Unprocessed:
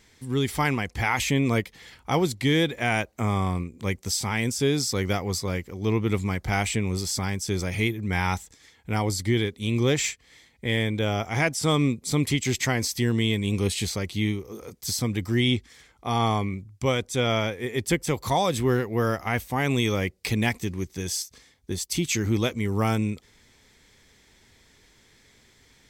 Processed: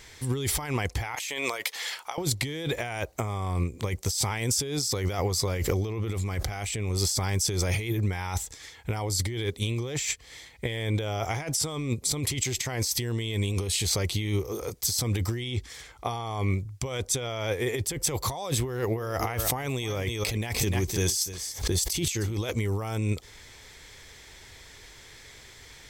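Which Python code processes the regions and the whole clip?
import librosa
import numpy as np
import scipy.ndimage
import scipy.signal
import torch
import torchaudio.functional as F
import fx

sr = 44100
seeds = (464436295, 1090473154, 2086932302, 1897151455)

y = fx.chain(x, sr, fx.highpass(hz=750.0, slope=12),
    fx.over_compress(threshold_db=-39.0, ratio=-1.0), at=(1.15, 2.18))
y = fx.chain(y, sr, fx.notch(hz=930.0, q=11.0),
    fx.env_flatten(amount_pct=50), at=(5.56, 6.89))
y = fx.chain(y, sr, fx.echo_single(ms=298, db=-15.0),
    fx.pre_swell(db_per_s=140.0), at=(18.66, 22.37))
y = fx.peak_eq(y, sr, hz=220.0, db=-11.0, octaves=1.0)
y = fx.over_compress(y, sr, threshold_db=-33.0, ratio=-1.0)
y = fx.dynamic_eq(y, sr, hz=1900.0, q=0.74, threshold_db=-50.0, ratio=4.0, max_db=-5)
y = y * librosa.db_to_amplitude(5.0)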